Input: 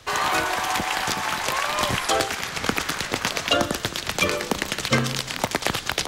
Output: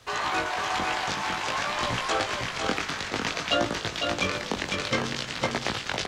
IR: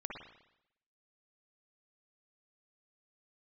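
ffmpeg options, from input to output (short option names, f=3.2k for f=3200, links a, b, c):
-filter_complex "[0:a]flanger=delay=17:depth=4.6:speed=0.56,acrossover=split=7200[a][b];[b]acompressor=threshold=-60dB:ratio=4:attack=1:release=60[c];[a][c]amix=inputs=2:normalize=0,asplit=2[d][e];[e]aecho=0:1:503:0.596[f];[d][f]amix=inputs=2:normalize=0,volume=-2dB"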